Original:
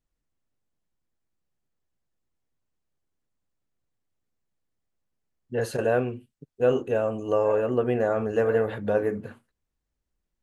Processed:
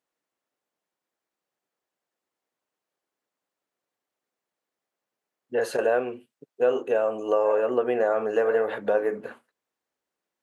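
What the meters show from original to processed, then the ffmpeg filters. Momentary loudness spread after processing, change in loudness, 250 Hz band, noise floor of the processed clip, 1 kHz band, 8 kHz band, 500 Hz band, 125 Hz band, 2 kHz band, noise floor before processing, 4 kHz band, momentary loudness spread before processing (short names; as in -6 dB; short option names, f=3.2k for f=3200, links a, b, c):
9 LU, +0.5 dB, -4.0 dB, under -85 dBFS, +2.0 dB, n/a, +1.0 dB, under -15 dB, +2.0 dB, -82 dBFS, +1.0 dB, 10 LU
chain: -af "highpass=450,acompressor=threshold=-29dB:ratio=2,highshelf=f=2.7k:g=-7,volume=7.5dB"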